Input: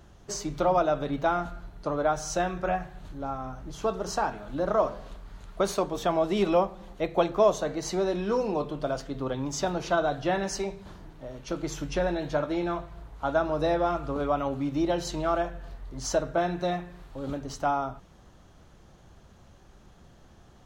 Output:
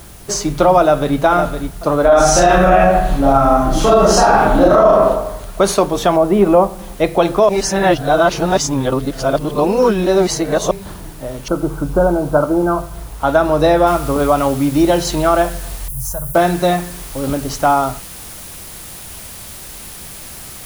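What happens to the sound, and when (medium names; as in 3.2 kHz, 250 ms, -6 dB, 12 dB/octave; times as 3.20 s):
0.79–1.19 s: echo throw 510 ms, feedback 25%, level -8 dB
2.02–4.90 s: reverb throw, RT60 0.87 s, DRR -9 dB
6.16–6.79 s: low-pass 1.4 kHz
7.49–10.71 s: reverse
11.48–12.94 s: brick-wall FIR low-pass 1.6 kHz
13.87 s: noise floor step -58 dB -49 dB
15.88–16.35 s: FFT filter 140 Hz 0 dB, 270 Hz -27 dB, 390 Hz -23 dB, 610 Hz -17 dB, 970 Hz -12 dB, 1.6 kHz -17 dB, 2.7 kHz -25 dB, 3.9 kHz -25 dB, 12 kHz +8 dB
whole clip: peaking EQ 10 kHz +7 dB 0.29 oct; loudness maximiser +15 dB; trim -1 dB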